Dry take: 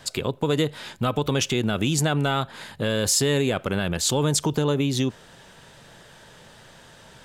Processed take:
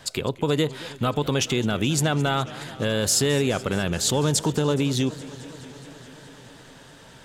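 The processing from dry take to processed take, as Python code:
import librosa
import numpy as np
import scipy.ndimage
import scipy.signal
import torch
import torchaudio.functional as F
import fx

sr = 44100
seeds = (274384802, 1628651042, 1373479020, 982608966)

y = fx.echo_warbled(x, sr, ms=211, feedback_pct=79, rate_hz=2.8, cents=175, wet_db=-19)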